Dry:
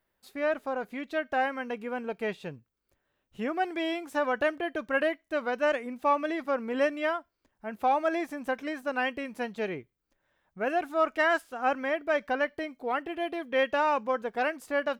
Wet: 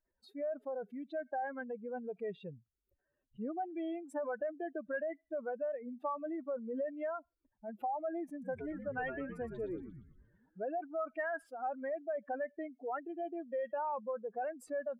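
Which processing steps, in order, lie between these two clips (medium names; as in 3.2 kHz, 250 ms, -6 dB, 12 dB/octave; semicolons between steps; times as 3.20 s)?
spectral contrast enhancement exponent 2.5; compression, threshold -27 dBFS, peak gain reduction 7 dB; 8.30–10.64 s: frequency-shifting echo 117 ms, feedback 55%, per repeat -98 Hz, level -7.5 dB; trim -6.5 dB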